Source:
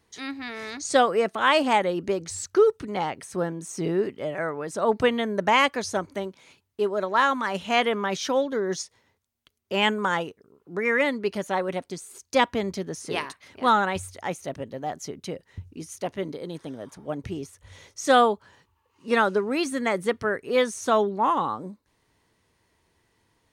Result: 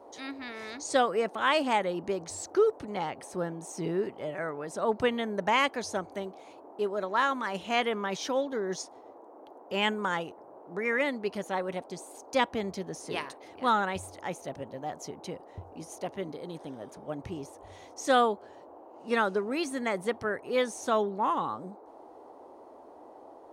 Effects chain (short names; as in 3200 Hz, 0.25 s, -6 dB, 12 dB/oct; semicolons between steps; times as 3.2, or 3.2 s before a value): band noise 280–910 Hz -45 dBFS; gain -5.5 dB